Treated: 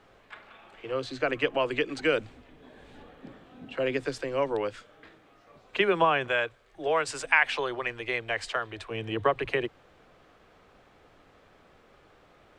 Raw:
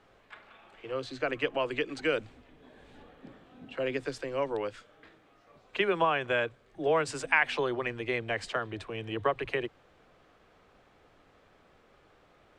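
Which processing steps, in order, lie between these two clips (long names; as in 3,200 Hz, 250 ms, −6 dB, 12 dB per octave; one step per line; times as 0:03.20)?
0:06.28–0:08.91: parametric band 190 Hz −11 dB 2.2 octaves
level +3.5 dB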